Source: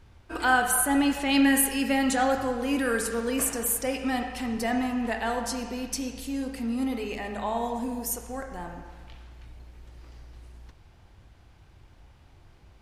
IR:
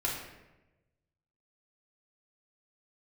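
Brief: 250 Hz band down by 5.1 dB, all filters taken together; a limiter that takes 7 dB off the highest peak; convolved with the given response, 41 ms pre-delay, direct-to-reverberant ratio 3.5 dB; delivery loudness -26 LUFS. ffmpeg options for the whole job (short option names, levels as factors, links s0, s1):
-filter_complex "[0:a]equalizer=f=250:t=o:g=-5.5,alimiter=limit=0.133:level=0:latency=1,asplit=2[s0][s1];[1:a]atrim=start_sample=2205,adelay=41[s2];[s1][s2]afir=irnorm=-1:irlink=0,volume=0.335[s3];[s0][s3]amix=inputs=2:normalize=0,volume=1.33"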